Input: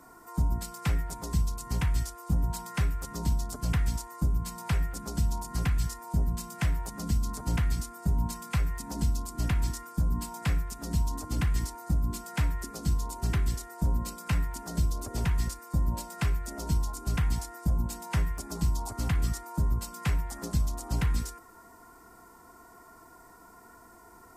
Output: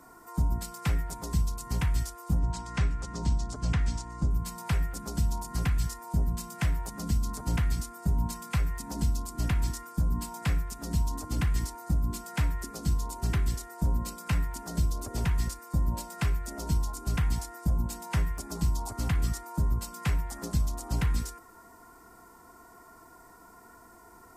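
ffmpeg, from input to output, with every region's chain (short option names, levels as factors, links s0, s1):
-filter_complex "[0:a]asettb=1/sr,asplit=3[s0][s1][s2];[s0]atrim=end=2.394[s3];[s1]atrim=start=2.39:end=4.31,asetpts=PTS-STARTPTS,afade=t=in:d=0.004:c=qsin,afade=t=out:st=1.916:d=0.004:c=qsin,lowpass=f=7700:w=0.5412,lowpass=f=7700:w=1.3066,aeval=exprs='val(0)+0.00891*(sin(2*PI*60*n/s)+sin(2*PI*2*60*n/s)/2+sin(2*PI*3*60*n/s)/3+sin(2*PI*4*60*n/s)/4+sin(2*PI*5*60*n/s)/5)':c=same[s4];[s2]atrim=start=4.306[s5];[s3][s4]acrossfade=d=0.004:c1=hsin:c2=qsin[s6];[s6][s5]acrossfade=d=0.004:c1=qsin:c2=hsin"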